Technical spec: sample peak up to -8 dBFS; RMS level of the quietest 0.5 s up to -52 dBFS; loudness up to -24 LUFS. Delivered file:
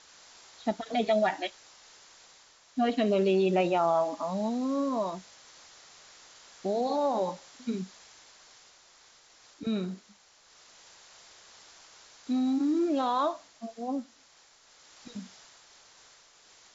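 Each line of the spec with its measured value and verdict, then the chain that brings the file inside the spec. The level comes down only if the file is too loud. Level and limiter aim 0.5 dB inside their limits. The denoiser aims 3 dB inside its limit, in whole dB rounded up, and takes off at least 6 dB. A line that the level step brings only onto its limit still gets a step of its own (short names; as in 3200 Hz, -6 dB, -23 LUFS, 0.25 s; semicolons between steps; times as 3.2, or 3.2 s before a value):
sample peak -15.0 dBFS: OK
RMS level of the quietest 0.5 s -60 dBFS: OK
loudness -29.5 LUFS: OK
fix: none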